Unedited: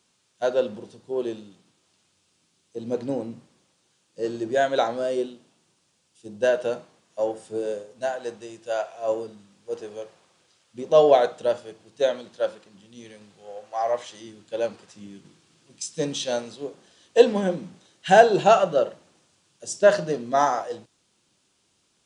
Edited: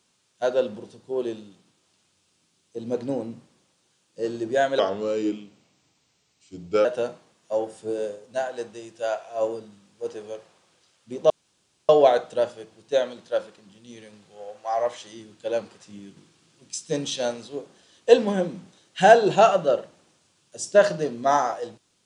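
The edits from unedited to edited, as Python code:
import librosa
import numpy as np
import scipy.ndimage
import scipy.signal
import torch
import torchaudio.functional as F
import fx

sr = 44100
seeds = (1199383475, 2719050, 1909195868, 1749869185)

y = fx.edit(x, sr, fx.speed_span(start_s=4.79, length_s=1.73, speed=0.84),
    fx.insert_room_tone(at_s=10.97, length_s=0.59), tone=tone)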